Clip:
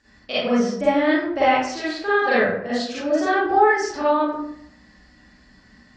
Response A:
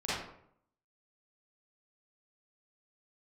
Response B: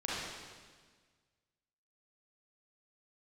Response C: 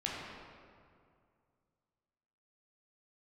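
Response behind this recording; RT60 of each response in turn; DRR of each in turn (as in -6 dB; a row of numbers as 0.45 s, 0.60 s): A; 0.70 s, 1.5 s, 2.2 s; -11.5 dB, -7.5 dB, -5.0 dB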